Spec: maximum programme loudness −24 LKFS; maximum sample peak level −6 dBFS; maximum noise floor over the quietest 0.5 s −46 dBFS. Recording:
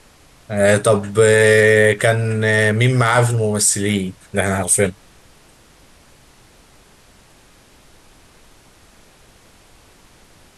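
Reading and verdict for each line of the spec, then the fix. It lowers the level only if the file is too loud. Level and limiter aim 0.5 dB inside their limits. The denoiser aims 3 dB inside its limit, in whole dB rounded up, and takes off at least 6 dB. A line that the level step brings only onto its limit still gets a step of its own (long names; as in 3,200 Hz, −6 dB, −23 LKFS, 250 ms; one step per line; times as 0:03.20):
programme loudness −15.0 LKFS: out of spec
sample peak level −3.0 dBFS: out of spec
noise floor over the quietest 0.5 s −49 dBFS: in spec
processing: level −9.5 dB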